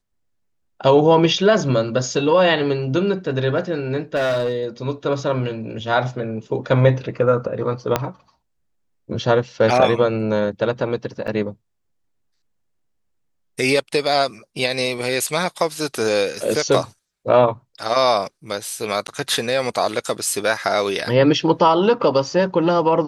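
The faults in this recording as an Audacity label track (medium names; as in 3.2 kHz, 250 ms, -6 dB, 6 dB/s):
4.150000	4.650000	clipped -16.5 dBFS
7.960000	7.960000	pop -3 dBFS
11.270000	11.280000	dropout 7.1 ms
19.070000	19.080000	dropout 9.9 ms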